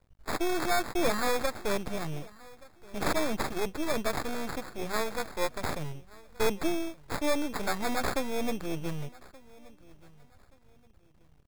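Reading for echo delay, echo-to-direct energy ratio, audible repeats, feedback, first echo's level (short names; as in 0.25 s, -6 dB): 1.176 s, -22.0 dB, 2, 29%, -22.5 dB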